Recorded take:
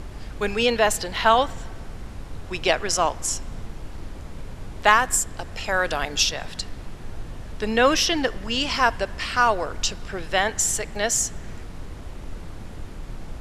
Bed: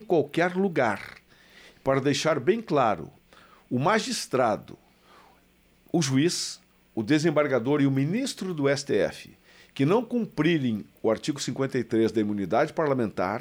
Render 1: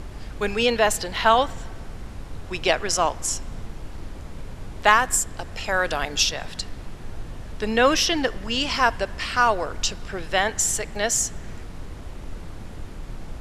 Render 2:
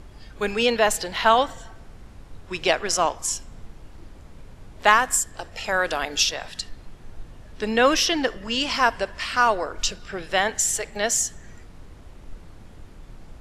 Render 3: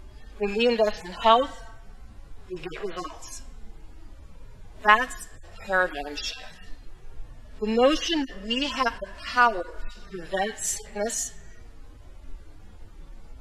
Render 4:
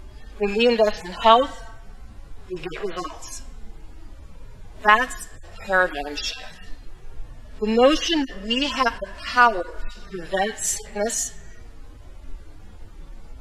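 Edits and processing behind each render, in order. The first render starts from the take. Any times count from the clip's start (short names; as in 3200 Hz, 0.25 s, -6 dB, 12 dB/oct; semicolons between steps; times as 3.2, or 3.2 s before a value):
nothing audible
noise print and reduce 8 dB
median-filter separation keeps harmonic; dynamic EQ 3600 Hz, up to +3 dB, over -41 dBFS, Q 0.79
gain +4 dB; limiter -1 dBFS, peak gain reduction 3 dB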